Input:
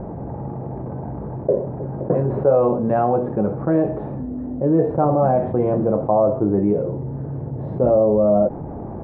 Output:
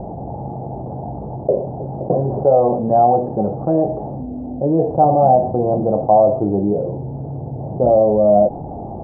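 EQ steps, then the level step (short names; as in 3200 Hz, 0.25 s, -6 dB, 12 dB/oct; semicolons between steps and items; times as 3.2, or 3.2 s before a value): synth low-pass 760 Hz, resonance Q 4.9; low shelf 460 Hz +8 dB; -7.0 dB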